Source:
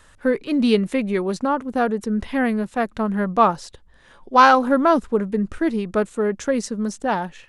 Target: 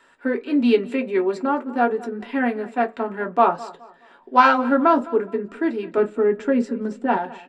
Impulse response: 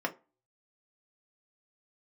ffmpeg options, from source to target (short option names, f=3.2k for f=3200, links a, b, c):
-filter_complex "[0:a]asettb=1/sr,asplit=3[a][b][c];[a]atrim=end=5.974[d];[b]atrim=start=5.97:end=7.17,asetpts=PTS-STARTPTS,afade=t=in:d=0.004:c=qsin,afade=t=out:st=1.196:d=0.004:c=qsin,bass=f=250:g=11,treble=f=4k:g=-8[e];[c]atrim=start=7.166[f];[d][e]acrossfade=d=0.004:c1=hsin:c2=qsin[g];[g][f]acrossfade=d=0.004:c1=qsin:c2=hsin,asplit=2[h][i];[i]adelay=210,lowpass=f=3.8k:p=1,volume=-19dB,asplit=2[j][k];[k]adelay=210,lowpass=f=3.8k:p=1,volume=0.33,asplit=2[l][m];[m]adelay=210,lowpass=f=3.8k:p=1,volume=0.33[n];[h][j][l][n]amix=inputs=4:normalize=0[o];[1:a]atrim=start_sample=2205,asetrate=61740,aresample=44100[p];[o][p]afir=irnorm=-1:irlink=0,volume=-5dB"